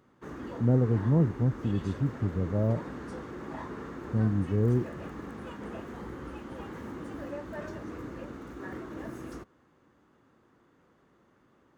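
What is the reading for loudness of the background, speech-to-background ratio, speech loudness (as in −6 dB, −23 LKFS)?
−41.0 LKFS, 12.5 dB, −28.5 LKFS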